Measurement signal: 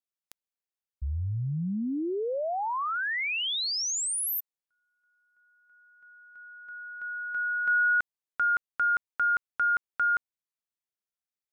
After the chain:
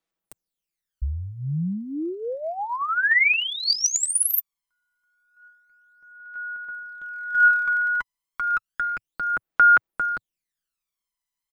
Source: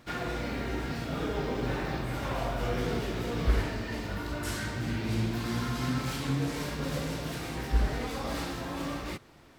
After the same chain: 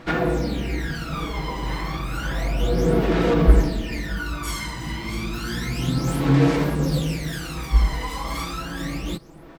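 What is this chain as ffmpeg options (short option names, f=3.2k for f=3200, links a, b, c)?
-af "equalizer=f=110:w=4.3:g=-14.5,aecho=1:1:6.1:0.49,aphaser=in_gain=1:out_gain=1:delay=1:decay=0.74:speed=0.31:type=sinusoidal,volume=2.5dB"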